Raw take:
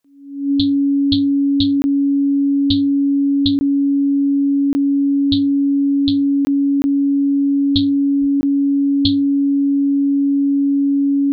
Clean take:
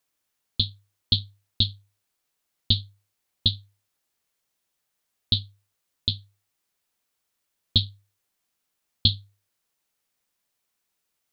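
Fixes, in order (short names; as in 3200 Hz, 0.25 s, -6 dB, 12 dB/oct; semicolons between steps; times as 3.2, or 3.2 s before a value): notch 280 Hz, Q 30; de-plosive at 8.2; interpolate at 1.82/3.59/4.73/6.45/6.82/8.41, 20 ms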